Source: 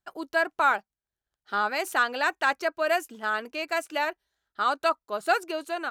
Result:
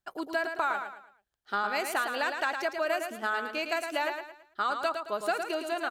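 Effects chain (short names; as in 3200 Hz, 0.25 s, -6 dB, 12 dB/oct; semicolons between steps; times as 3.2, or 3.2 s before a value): compressor, threshold -26 dBFS, peak gain reduction 9 dB; on a send: feedback echo 0.11 s, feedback 35%, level -6.5 dB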